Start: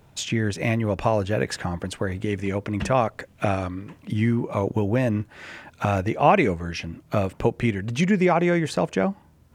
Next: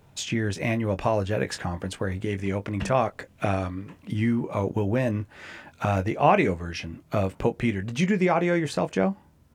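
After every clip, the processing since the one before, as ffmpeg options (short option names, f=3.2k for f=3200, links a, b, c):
-filter_complex "[0:a]asplit=2[a][b];[b]adelay=21,volume=-10dB[c];[a][c]amix=inputs=2:normalize=0,volume=-2.5dB"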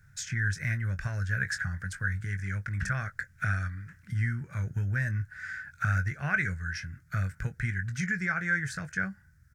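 -af "firequalizer=gain_entry='entry(120,0);entry(270,-23);entry(470,-24);entry(1000,-23);entry(1500,10);entry(2800,-17);entry(5400,-2);entry(10000,-4)':delay=0.05:min_phase=1"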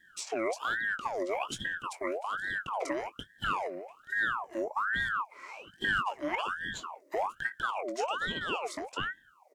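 -af "equalizer=f=250:t=o:w=1:g=8,equalizer=f=500:t=o:w=1:g=-9,equalizer=f=2k:t=o:w=1:g=-6,equalizer=f=4k:t=o:w=1:g=3,aeval=exprs='val(0)*sin(2*PI*1100*n/s+1100*0.6/1.2*sin(2*PI*1.2*n/s))':c=same"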